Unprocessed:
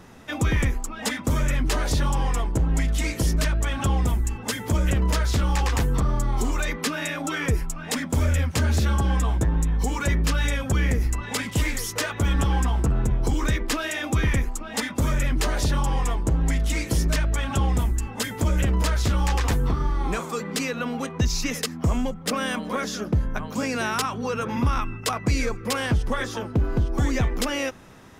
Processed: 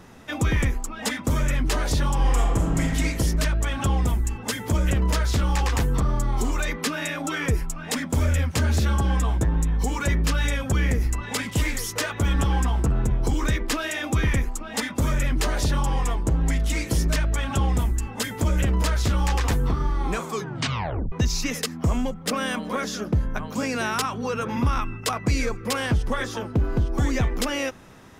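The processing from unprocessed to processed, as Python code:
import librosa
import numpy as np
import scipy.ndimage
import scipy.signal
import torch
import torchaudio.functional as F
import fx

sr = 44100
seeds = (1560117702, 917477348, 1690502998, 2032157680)

y = fx.reverb_throw(x, sr, start_s=2.17, length_s=0.72, rt60_s=1.5, drr_db=0.0)
y = fx.edit(y, sr, fx.tape_stop(start_s=20.3, length_s=0.82), tone=tone)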